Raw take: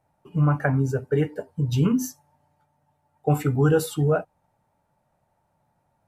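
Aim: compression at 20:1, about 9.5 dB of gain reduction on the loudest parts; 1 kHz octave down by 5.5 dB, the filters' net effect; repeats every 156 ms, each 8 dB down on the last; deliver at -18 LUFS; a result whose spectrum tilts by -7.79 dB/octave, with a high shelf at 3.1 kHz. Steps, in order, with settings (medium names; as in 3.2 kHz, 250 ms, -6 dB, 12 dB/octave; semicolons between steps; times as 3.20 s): peaking EQ 1 kHz -7.5 dB; treble shelf 3.1 kHz -7.5 dB; compression 20:1, threshold -25 dBFS; feedback delay 156 ms, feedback 40%, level -8 dB; trim +13.5 dB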